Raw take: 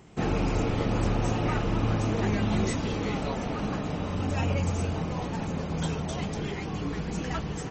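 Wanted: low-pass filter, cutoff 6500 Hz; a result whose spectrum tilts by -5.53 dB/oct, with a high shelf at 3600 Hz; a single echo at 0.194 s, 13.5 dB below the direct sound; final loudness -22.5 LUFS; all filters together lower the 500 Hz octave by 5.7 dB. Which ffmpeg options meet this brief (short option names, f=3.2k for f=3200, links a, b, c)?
-af "lowpass=6.5k,equalizer=f=500:t=o:g=-7.5,highshelf=f=3.6k:g=6,aecho=1:1:194:0.211,volume=7.5dB"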